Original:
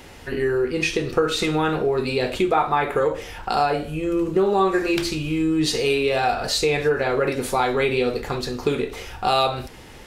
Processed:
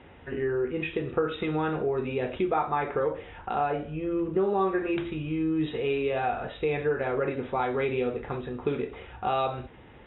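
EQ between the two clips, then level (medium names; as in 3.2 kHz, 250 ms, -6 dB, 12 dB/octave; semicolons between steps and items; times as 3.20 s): high-pass 48 Hz; brick-wall FIR low-pass 3.9 kHz; distance through air 360 m; -5.5 dB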